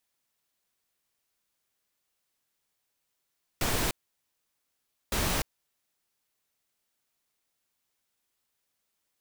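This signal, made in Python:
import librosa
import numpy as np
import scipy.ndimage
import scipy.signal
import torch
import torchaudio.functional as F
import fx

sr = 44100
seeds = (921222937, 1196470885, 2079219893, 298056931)

y = fx.noise_burst(sr, seeds[0], colour='pink', on_s=0.3, off_s=1.21, bursts=2, level_db=-28.0)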